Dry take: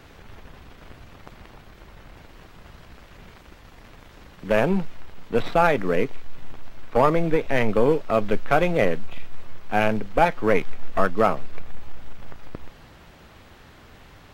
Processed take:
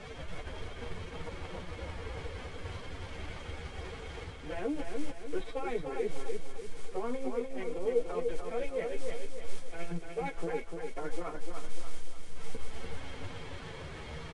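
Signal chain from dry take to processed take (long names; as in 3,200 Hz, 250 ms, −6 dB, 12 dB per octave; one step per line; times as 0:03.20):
reversed playback
downward compressor 5 to 1, threshold −31 dBFS, peak gain reduction 17.5 dB
reversed playback
brickwall limiter −30.5 dBFS, peak gain reduction 11.5 dB
phase-vocoder pitch shift with formants kept +8 semitones
multi-voice chorus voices 4, 0.67 Hz, delay 12 ms, depth 1.4 ms
noise that follows the level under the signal 27 dB
hollow resonant body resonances 470/2,200/3,200 Hz, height 10 dB, ringing for 40 ms
on a send: repeating echo 296 ms, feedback 46%, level −5 dB
on the sum: level +5 dB
IMA ADPCM 88 kbit/s 22,050 Hz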